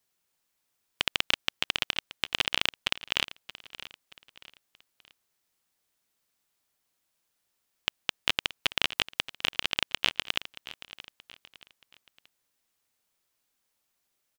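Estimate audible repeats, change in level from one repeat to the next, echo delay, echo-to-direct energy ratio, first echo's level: 3, -8.0 dB, 0.627 s, -15.5 dB, -16.0 dB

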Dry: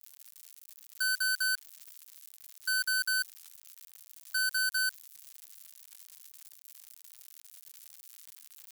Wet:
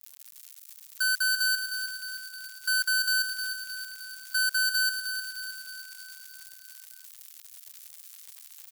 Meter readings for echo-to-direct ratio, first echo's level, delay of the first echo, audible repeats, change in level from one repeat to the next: -6.0 dB, -8.0 dB, 0.309 s, 6, -4.5 dB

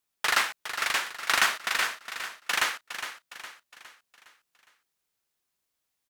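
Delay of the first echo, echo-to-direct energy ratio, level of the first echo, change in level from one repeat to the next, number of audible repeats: 0.411 s, -9.0 dB, -10.0 dB, -6.5 dB, 4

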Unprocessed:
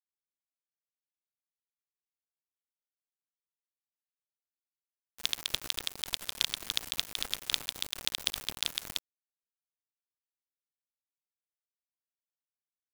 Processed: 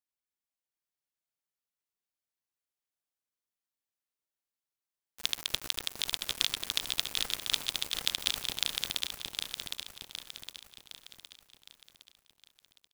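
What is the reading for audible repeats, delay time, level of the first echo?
5, 0.762 s, -4.5 dB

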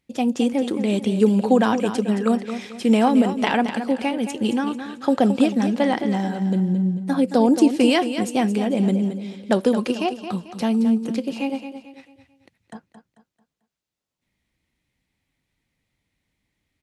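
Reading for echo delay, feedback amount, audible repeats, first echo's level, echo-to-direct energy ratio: 0.221 s, 37%, 3, -10.0 dB, -9.5 dB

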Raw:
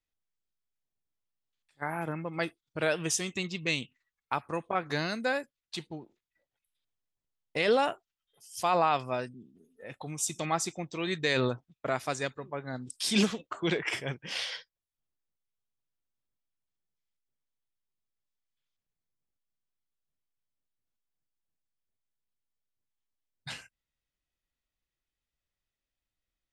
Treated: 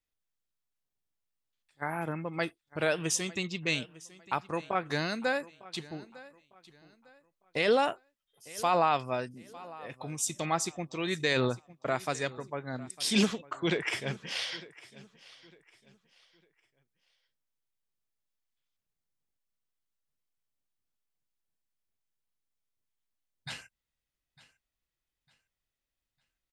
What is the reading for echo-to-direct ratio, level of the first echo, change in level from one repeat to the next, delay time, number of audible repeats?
-19.5 dB, -20.0 dB, -10.0 dB, 0.903 s, 2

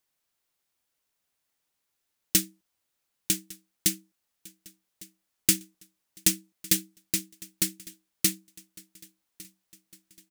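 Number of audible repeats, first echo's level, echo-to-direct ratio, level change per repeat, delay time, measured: 3, -22.0 dB, -20.5 dB, -5.5 dB, 1.155 s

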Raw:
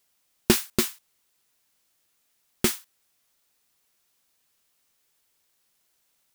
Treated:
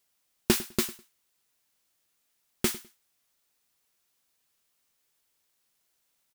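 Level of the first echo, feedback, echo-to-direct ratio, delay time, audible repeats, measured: -18.5 dB, 21%, -18.5 dB, 0.102 s, 2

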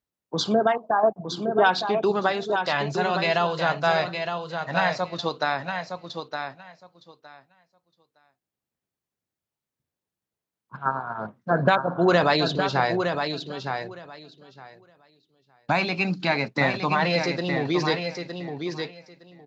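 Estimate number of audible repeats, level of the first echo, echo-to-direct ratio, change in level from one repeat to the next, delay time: 2, -6.5 dB, -6.5 dB, -16.0 dB, 0.913 s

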